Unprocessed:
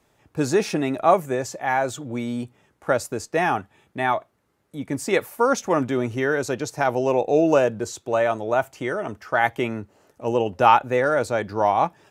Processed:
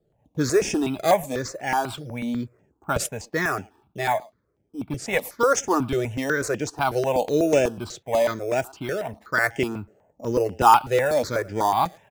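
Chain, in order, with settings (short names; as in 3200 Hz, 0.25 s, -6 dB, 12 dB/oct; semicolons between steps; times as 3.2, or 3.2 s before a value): high shelf 3300 Hz +8.5 dB; speakerphone echo 0.11 s, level -24 dB; low-pass opened by the level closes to 530 Hz, open at -18.5 dBFS; in parallel at -9 dB: decimation with a swept rate 11×, swing 100% 0.28 Hz; on the sum: step phaser 8.1 Hz 260–4100 Hz; gain -1 dB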